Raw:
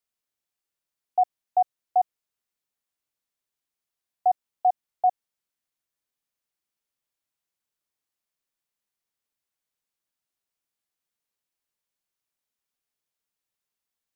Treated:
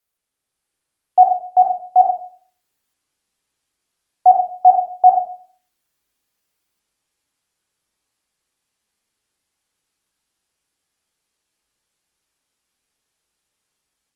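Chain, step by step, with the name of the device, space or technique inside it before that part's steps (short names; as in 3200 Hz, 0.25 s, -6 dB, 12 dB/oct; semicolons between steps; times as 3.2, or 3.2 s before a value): 1.23–2 bell 700 Hz -2.5 dB 1.2 oct; speakerphone in a meeting room (reverb RT60 0.45 s, pre-delay 21 ms, DRR 0.5 dB; AGC gain up to 4 dB; gain +6 dB; Opus 32 kbps 48000 Hz)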